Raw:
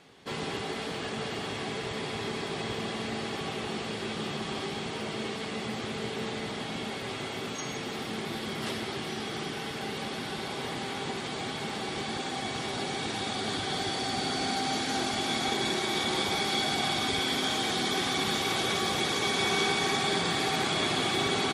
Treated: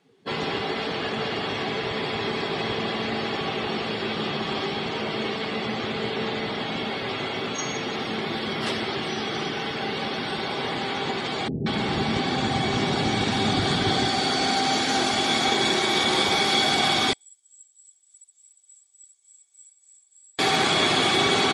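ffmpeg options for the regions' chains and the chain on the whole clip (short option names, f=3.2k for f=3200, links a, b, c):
-filter_complex "[0:a]asettb=1/sr,asplit=3[a][b][c];[a]atrim=end=11.484[d];[b]atrim=start=11.48:end=14.08,asetpts=PTS-STARTPTS,afade=t=in:d=0.004:c=qsin,afade=t=out:st=2.596:d=0.004:c=qsin,lowshelf=f=330:g=11,acrossover=split=440[e][f];[f]adelay=180[g];[e][g]amix=inputs=2:normalize=0,atrim=end_sample=114660[h];[c]atrim=start=14.076[i];[d][h]acrossfade=d=0.004:c1=hsin:c2=qsin[j];[j][i]acrossfade=d=0.004:c1=qsin:c2=hsin,asettb=1/sr,asplit=3[k][l][m];[k]atrim=end=17.134[n];[l]atrim=start=17.13:end=20.39,asetpts=PTS-STARTPTS,afade=t=in:d=0.004:c=qsin,afade=t=out:st=3.256:d=0.004:c=qsin,acrossover=split=860[o][p];[o]aeval=exprs='val(0)*(1-0.5/2+0.5/2*cos(2*PI*3.4*n/s))':c=same[q];[p]aeval=exprs='val(0)*(1-0.5/2-0.5/2*cos(2*PI*3.4*n/s))':c=same[r];[q][r]amix=inputs=2:normalize=0,bandpass=f=7.8k:t=q:w=20[s];[m]atrim=start=20.386[t];[n][s]acrossfade=d=0.004:c1=hsin:c2=qsin[u];[u][t]acrossfade=d=0.004:c1=qsin:c2=hsin,afftdn=nr=19:nf=-46,lowshelf=f=240:g=-5,volume=8dB"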